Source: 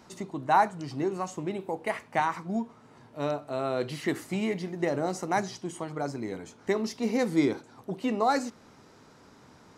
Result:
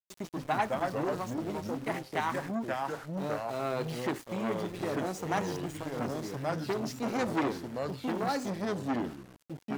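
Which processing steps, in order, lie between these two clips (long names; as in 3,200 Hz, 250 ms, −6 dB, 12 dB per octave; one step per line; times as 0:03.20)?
rotating-speaker cabinet horn 7.5 Hz, later 0.6 Hz, at 0:00.58
centre clipping without the shift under −42.5 dBFS
delay with pitch and tempo change per echo 122 ms, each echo −3 semitones, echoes 2
saturating transformer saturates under 1,200 Hz
level −1 dB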